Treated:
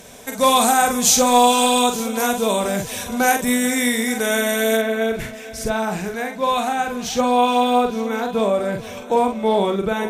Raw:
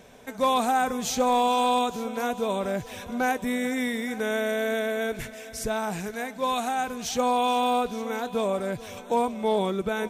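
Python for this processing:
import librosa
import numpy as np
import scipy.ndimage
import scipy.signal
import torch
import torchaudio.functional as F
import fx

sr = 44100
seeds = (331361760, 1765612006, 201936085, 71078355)

y = fx.peak_eq(x, sr, hz=10000.0, db=fx.steps((0.0, 12.5), (4.77, -3.5)), octaves=2.0)
y = fx.doubler(y, sr, ms=45.0, db=-5.5)
y = y * 10.0 ** (6.0 / 20.0)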